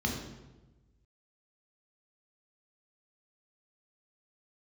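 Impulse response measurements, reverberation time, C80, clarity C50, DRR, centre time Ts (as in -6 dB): 1.1 s, 6.0 dB, 4.0 dB, -0.5 dB, 43 ms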